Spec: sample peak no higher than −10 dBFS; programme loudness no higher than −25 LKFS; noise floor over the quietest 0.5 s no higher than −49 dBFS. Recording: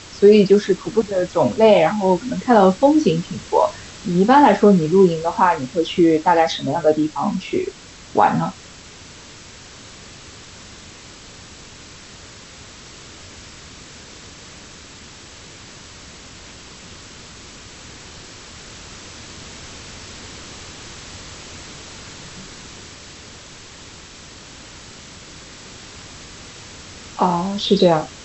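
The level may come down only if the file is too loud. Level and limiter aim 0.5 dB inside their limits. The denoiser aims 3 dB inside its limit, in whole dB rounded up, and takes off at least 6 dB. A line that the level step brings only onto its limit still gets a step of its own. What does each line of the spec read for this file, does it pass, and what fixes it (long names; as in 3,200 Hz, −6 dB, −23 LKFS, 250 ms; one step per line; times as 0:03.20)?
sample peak −2.0 dBFS: out of spec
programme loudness −16.5 LKFS: out of spec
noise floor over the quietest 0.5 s −41 dBFS: out of spec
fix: level −9 dB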